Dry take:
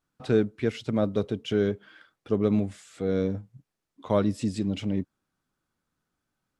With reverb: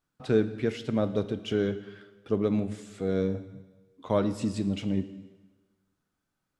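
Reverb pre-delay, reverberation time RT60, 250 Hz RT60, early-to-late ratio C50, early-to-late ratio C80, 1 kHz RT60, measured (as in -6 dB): 5 ms, 1.3 s, 1.2 s, 13.0 dB, 14.5 dB, 1.3 s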